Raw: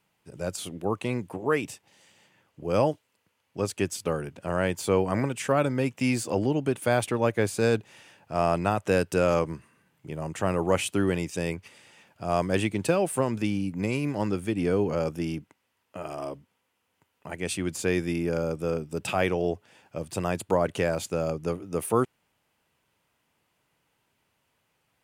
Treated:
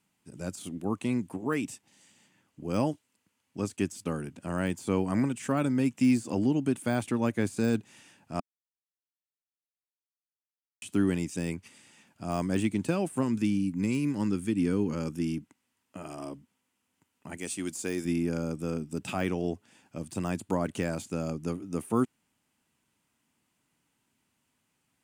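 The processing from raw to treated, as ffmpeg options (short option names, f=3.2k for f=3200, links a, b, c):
-filter_complex "[0:a]asettb=1/sr,asplit=3[a][b][c];[a]atrim=end=3.604[d];[b]atrim=start=3.6:end=4.24,asetpts=PTS-STARTPTS,afade=t=in:d=0.004:c=qsin,afade=t=out:st=0.636:d=0.004:c=qsin,agate=range=-33dB:threshold=-46dB:ratio=3:release=100:detection=peak[e];[c]atrim=start=4.236[f];[d][e]acrossfade=d=0.004:c1=hsin:c2=qsin[g];[g][f]acrossfade=d=0.004:c1=qsin:c2=hsin,asettb=1/sr,asplit=3[h][i][j];[h]atrim=end=13.234[k];[i]atrim=start=13.23:end=15.37,asetpts=PTS-STARTPTS,afade=t=in:d=0.004:c=qsin,afade=t=out:st=2.136:d=0.004:c=qsin,equalizer=f=680:w=4.2:g=-11[l];[j]atrim=start=15.366[m];[k][l]acrossfade=d=0.004:c1=hsin:c2=qsin[n];[n][m]acrossfade=d=0.004:c1=qsin:c2=hsin,asettb=1/sr,asplit=3[o][p][q];[o]atrim=end=17.374[r];[p]atrim=start=17.37:end=18.05,asetpts=PTS-STARTPTS,afade=t=in:d=0.004:c=qsin,afade=t=out:st=0.676:d=0.004:c=qsin,bass=f=250:g=-10,treble=f=4k:g=11[s];[q]atrim=start=18.046[t];[r][s]acrossfade=d=0.004:c1=hsin:c2=qsin[u];[u][t]acrossfade=d=0.004:c1=qsin:c2=hsin,asplit=3[v][w][x];[v]atrim=end=8.4,asetpts=PTS-STARTPTS,afade=t=out:st=8.396:d=0.004:c=hsin[y];[w]atrim=start=8.4:end=10.82,asetpts=PTS-STARTPTS,volume=0[z];[x]atrim=start=10.82,asetpts=PTS-STARTPTS,afade=t=in:d=0.004:c=hsin[aa];[y][z][aa]concat=n=3:v=0:a=1,deesser=0.85,equalizer=f=250:t=o:w=1:g=10,equalizer=f=500:t=o:w=1:g=-6,equalizer=f=8k:t=o:w=1:g=8,volume=-5dB"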